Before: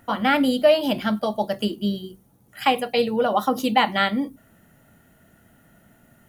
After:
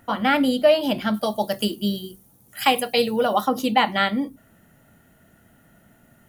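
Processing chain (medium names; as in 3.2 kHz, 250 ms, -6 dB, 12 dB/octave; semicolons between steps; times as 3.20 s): 1.14–3.41 s: treble shelf 4.7 kHz +12 dB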